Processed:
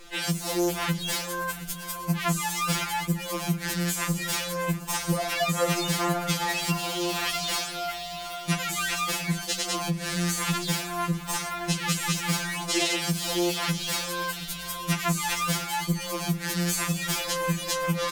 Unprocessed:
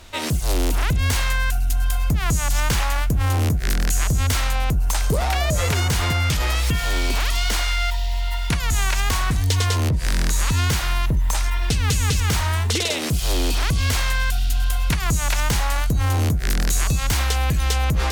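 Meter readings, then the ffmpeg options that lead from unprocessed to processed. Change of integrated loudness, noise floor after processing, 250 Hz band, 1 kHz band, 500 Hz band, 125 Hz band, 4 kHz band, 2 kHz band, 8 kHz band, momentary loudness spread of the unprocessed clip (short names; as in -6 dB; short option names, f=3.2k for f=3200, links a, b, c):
-6.0 dB, -37 dBFS, 0.0 dB, -2.5 dB, -1.0 dB, -10.5 dB, -3.0 dB, -4.5 dB, -3.0 dB, 3 LU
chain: -af "aecho=1:1:719|1438|2157|2876|3595:0.141|0.0749|0.0397|0.021|0.0111,afftfilt=real='re*2.83*eq(mod(b,8),0)':imag='im*2.83*eq(mod(b,8),0)':win_size=2048:overlap=0.75"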